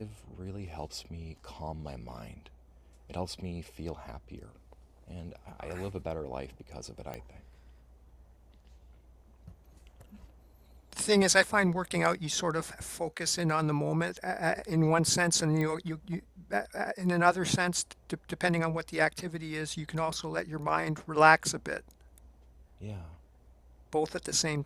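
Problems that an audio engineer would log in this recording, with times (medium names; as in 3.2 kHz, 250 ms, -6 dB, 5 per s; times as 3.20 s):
7.14 s: pop -24 dBFS
15.61 s: pop -21 dBFS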